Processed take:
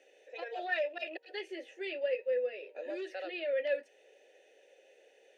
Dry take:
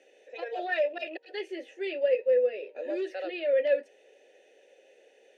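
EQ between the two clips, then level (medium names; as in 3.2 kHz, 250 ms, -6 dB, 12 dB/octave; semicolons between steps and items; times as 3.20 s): Bessel high-pass 350 Hz; dynamic bell 480 Hz, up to -5 dB, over -38 dBFS, Q 1.2; -2.0 dB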